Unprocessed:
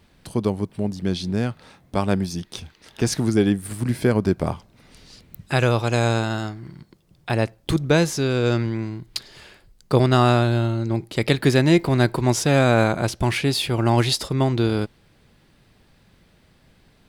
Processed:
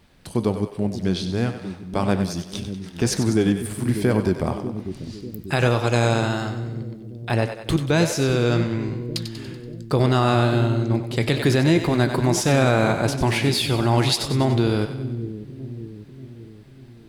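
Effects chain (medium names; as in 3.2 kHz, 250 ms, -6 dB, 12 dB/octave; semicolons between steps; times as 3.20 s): two-band feedback delay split 390 Hz, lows 592 ms, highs 95 ms, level -10 dB; flange 1.2 Hz, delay 5.4 ms, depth 9.4 ms, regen -76%; peak limiter -14 dBFS, peak gain reduction 6 dB; trim +5 dB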